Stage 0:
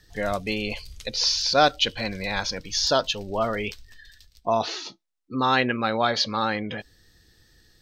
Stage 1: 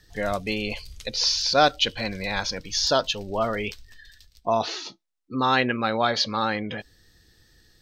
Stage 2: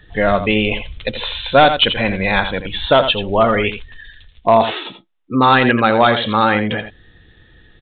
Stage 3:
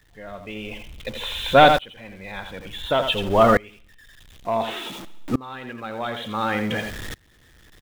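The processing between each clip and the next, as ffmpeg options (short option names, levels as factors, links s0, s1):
-af anull
-af "aresample=8000,asoftclip=type=hard:threshold=0.2,aresample=44100,aecho=1:1:84:0.299,alimiter=level_in=4.22:limit=0.891:release=50:level=0:latency=1,volume=0.891"
-af "aeval=exprs='val(0)+0.5*0.0473*sgn(val(0))':c=same,aecho=1:1:71|142|213|284|355:0.1|0.058|0.0336|0.0195|0.0113,aeval=exprs='val(0)*pow(10,-28*if(lt(mod(-0.56*n/s,1),2*abs(-0.56)/1000),1-mod(-0.56*n/s,1)/(2*abs(-0.56)/1000),(mod(-0.56*n/s,1)-2*abs(-0.56)/1000)/(1-2*abs(-0.56)/1000))/20)':c=same"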